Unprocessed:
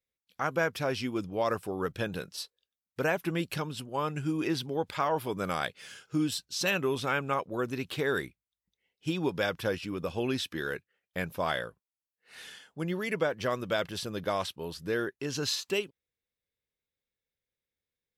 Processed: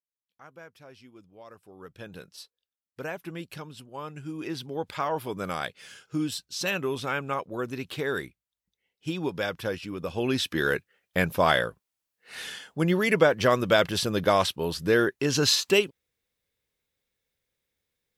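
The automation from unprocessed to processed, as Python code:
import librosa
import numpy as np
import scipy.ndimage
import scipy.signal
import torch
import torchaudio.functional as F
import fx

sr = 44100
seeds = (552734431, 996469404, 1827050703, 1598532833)

y = fx.gain(x, sr, db=fx.line((1.54, -19.0), (2.2, -6.5), (4.23, -6.5), (4.88, 0.0), (9.98, 0.0), (10.66, 9.0)))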